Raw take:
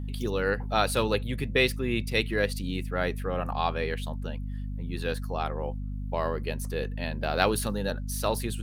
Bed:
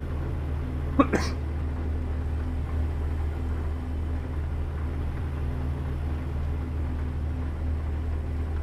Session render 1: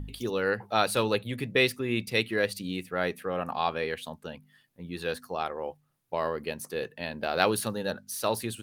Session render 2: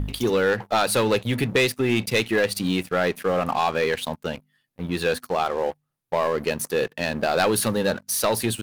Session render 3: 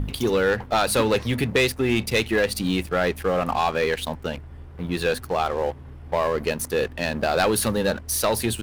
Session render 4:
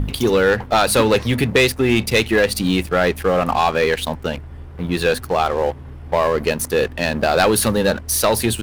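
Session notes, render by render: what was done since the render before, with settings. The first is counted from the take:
de-hum 50 Hz, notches 5
compressor 2:1, threshold -28 dBFS, peak gain reduction 6 dB; sample leveller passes 3
add bed -11 dB
gain +5.5 dB

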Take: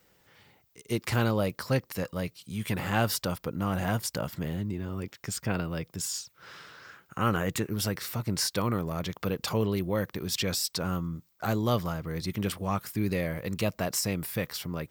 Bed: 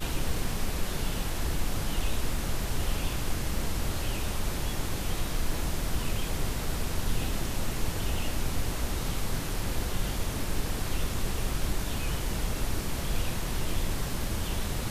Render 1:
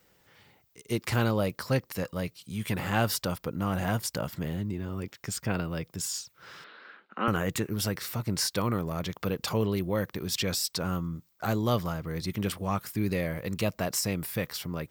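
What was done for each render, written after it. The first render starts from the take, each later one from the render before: 6.64–7.28 Chebyshev band-pass 210–4100 Hz, order 4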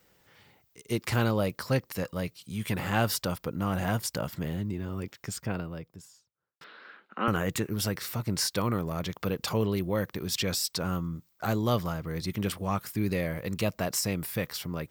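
4.99–6.61 studio fade out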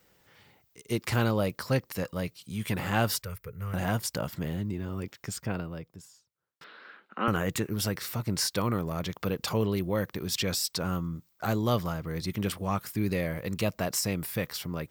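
3.22–3.74 EQ curve 110 Hz 0 dB, 190 Hz -13 dB, 300 Hz -29 dB, 420 Hz -4 dB, 750 Hz -22 dB, 1200 Hz -10 dB, 2200 Hz -2 dB, 3200 Hz -15 dB, 7300 Hz -8 dB, 12000 Hz -2 dB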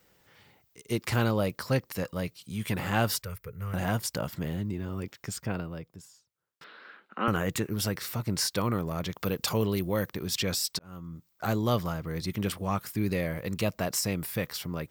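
9.17–10.1 high shelf 4700 Hz +6.5 dB; 10.79–11.46 fade in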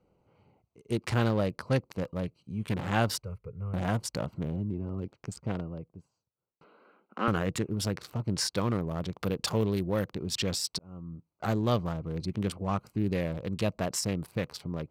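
Wiener smoothing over 25 samples; LPF 10000 Hz 12 dB/oct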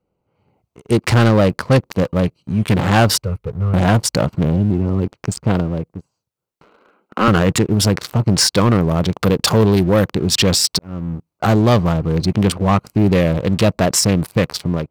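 sample leveller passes 2; AGC gain up to 10 dB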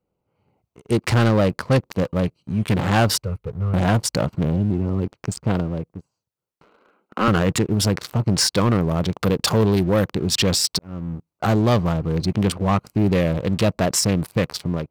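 gain -4.5 dB

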